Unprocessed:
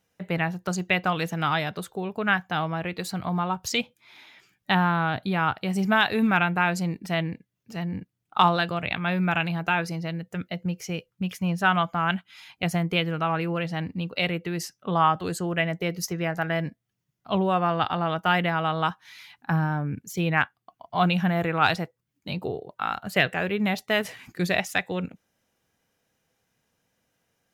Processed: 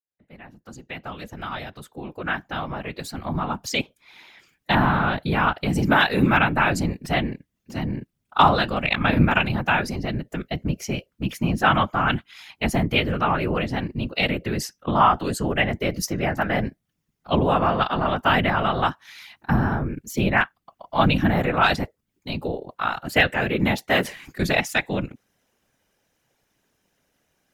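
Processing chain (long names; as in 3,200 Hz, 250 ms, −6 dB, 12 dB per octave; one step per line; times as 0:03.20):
fade in at the beginning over 5.16 s
random phases in short frames
0:08.81–0:09.46: transient designer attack +8 dB, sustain −1 dB
level +3.5 dB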